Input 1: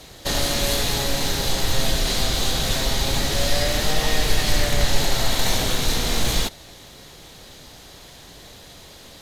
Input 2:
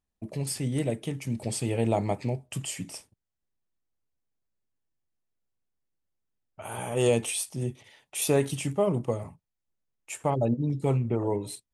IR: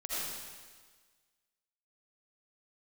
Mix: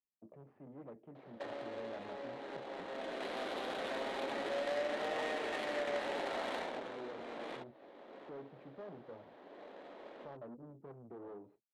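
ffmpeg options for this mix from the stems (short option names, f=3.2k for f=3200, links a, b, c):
-filter_complex "[0:a]highpass=f=230:w=0.5412,highpass=f=230:w=1.3066,equalizer=f=580:t=o:w=0.29:g=4,acompressor=threshold=-33dB:ratio=3,adelay=1150,volume=-1.5dB[a];[1:a]aeval=exprs='(tanh(39.8*val(0)+0.45)-tanh(0.45))/39.8':c=same,lowpass=1.9k,volume=-11.5dB,asplit=2[b][c];[c]apad=whole_len=457146[d];[a][d]sidechaincompress=threshold=-49dB:ratio=8:attack=5.9:release=1130[e];[e][b]amix=inputs=2:normalize=0,highpass=51,acrossover=split=210 4000:gain=0.141 1 0.0794[f][g][h];[f][g][h]amix=inputs=3:normalize=0,adynamicsmooth=sensitivity=6:basefreq=1.1k"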